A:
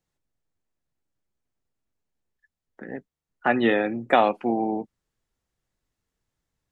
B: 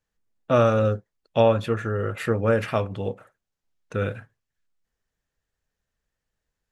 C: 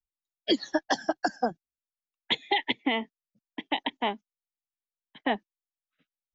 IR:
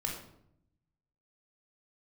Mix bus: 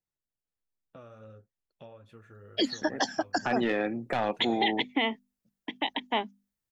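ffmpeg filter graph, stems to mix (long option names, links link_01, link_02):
-filter_complex "[0:a]agate=range=-10dB:threshold=-44dB:ratio=16:detection=peak,aeval=exprs='0.596*(cos(1*acos(clip(val(0)/0.596,-1,1)))-cos(1*PI/2))+0.266*(cos(2*acos(clip(val(0)/0.596,-1,1)))-cos(2*PI/2))+0.0211*(cos(8*acos(clip(val(0)/0.596,-1,1)))-cos(8*PI/2))':channel_layout=same,volume=-4dB[link_01];[1:a]acompressor=threshold=-31dB:ratio=4,flanger=delay=3.4:depth=8.2:regen=-50:speed=0.8:shape=triangular,adelay=450,volume=-14dB[link_02];[2:a]highshelf=frequency=5700:gain=7,bandreject=frequency=50:width_type=h:width=6,bandreject=frequency=100:width_type=h:width=6,bandreject=frequency=150:width_type=h:width=6,bandreject=frequency=200:width_type=h:width=6,bandreject=frequency=250:width_type=h:width=6,adelay=2100,volume=0dB[link_03];[link_01][link_02][link_03]amix=inputs=3:normalize=0,alimiter=limit=-16.5dB:level=0:latency=1:release=18"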